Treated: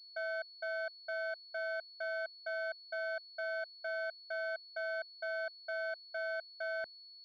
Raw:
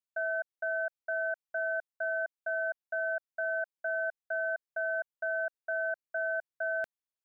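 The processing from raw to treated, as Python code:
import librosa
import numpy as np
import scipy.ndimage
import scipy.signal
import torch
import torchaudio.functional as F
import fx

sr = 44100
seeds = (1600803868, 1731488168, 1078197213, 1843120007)

y = fx.pwm(x, sr, carrier_hz=4400.0)
y = y * librosa.db_to_amplitude(-5.0)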